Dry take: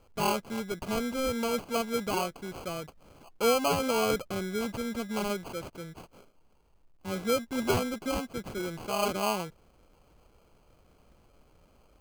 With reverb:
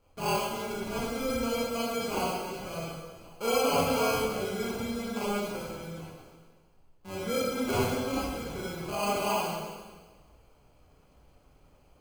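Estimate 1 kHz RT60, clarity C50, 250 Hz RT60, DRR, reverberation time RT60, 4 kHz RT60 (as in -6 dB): 1.4 s, -3.0 dB, 1.5 s, -7.5 dB, 1.4 s, 1.4 s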